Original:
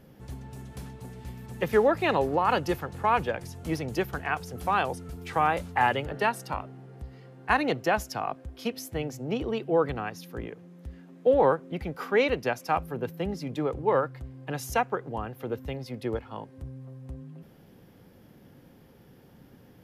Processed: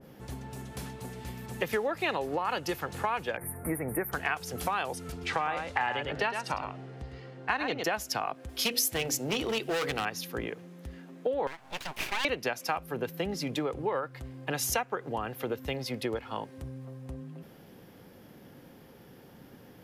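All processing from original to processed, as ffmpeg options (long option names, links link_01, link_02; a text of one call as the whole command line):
ffmpeg -i in.wav -filter_complex "[0:a]asettb=1/sr,asplit=3[link_01][link_02][link_03];[link_01]atrim=end=3.374[link_04];[link_02]atrim=start=3.37:end=4.12,asetpts=PTS-STARTPTS,afade=type=in:duration=0.004:curve=qsin,afade=type=out:start_time=0.746:duration=0.004:curve=qsin,asuperstop=centerf=4600:order=12:qfactor=0.66,equalizer=frequency=12000:width_type=o:width=0.9:gain=8[link_05];[link_03]atrim=start=4.116[link_06];[link_04][link_05]acrossfade=duration=0.004:curve1=hsin:curve2=qsin[link_07];[link_07][link_06]acrossfade=duration=0.004:curve1=qsin:curve2=hsin,asettb=1/sr,asplit=3[link_08][link_09][link_10];[link_08]atrim=end=5.124[link_11];[link_09]atrim=start=5.12:end=7.84,asetpts=PTS-STARTPTS,afade=type=in:duration=0.004:curve=qsin,afade=type=out:start_time=2.716:duration=0.004:curve=qsin,lowpass=6100,aecho=1:1:106:0.398,atrim=end_sample=119952[link_12];[link_10]atrim=start=7.836[link_13];[link_11][link_12]acrossfade=duration=0.004:curve1=hsin:curve2=qsin[link_14];[link_14][link_13]acrossfade=duration=0.004:curve1=qsin:curve2=hsin,asettb=1/sr,asplit=3[link_15][link_16][link_17];[link_15]atrim=end=8.494[link_18];[link_16]atrim=start=8.49:end=10.05,asetpts=PTS-STARTPTS,afade=type=in:duration=0.004:curve=qsin,afade=type=out:start_time=1.556:duration=0.004:curve=qsin,bandreject=frequency=60:width_type=h:width=6,bandreject=frequency=120:width_type=h:width=6,bandreject=frequency=180:width_type=h:width=6,bandreject=frequency=240:width_type=h:width=6,bandreject=frequency=300:width_type=h:width=6,bandreject=frequency=360:width_type=h:width=6,bandreject=frequency=420:width_type=h:width=6,bandreject=frequency=480:width_type=h:width=6,asoftclip=type=hard:threshold=-27dB,highshelf=frequency=3000:gain=10[link_19];[link_17]atrim=start=10.046[link_20];[link_18][link_19]acrossfade=duration=0.004:curve1=hsin:curve2=qsin[link_21];[link_21][link_20]acrossfade=duration=0.004:curve1=qsin:curve2=hsin,asettb=1/sr,asplit=3[link_22][link_23][link_24];[link_22]atrim=end=11.474[link_25];[link_23]atrim=start=11.47:end=12.25,asetpts=PTS-STARTPTS,afade=type=in:duration=0.004:curve=qsin,afade=type=out:start_time=0.776:duration=0.004:curve=qsin,highpass=360,acompressor=threshold=-28dB:ratio=5:attack=3.2:release=140:knee=1:detection=peak,aeval=exprs='abs(val(0))':channel_layout=same[link_26];[link_24]atrim=start=12.246[link_27];[link_25][link_26]acrossfade=duration=0.004:curve1=hsin:curve2=qsin[link_28];[link_28][link_27]acrossfade=duration=0.004:curve1=qsin:curve2=hsin,lowshelf=frequency=180:gain=-8,acompressor=threshold=-33dB:ratio=6,adynamicequalizer=threshold=0.00251:dfrequency=1600:dqfactor=0.7:tfrequency=1600:tqfactor=0.7:attack=5:release=100:ratio=0.375:range=2.5:mode=boostabove:tftype=highshelf,volume=4.5dB" out.wav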